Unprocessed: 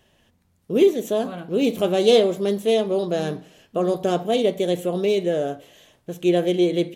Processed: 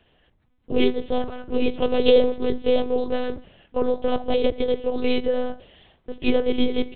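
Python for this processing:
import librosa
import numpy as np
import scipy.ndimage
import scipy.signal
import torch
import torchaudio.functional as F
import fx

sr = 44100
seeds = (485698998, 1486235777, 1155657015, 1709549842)

y = fx.lpc_monotone(x, sr, seeds[0], pitch_hz=250.0, order=8)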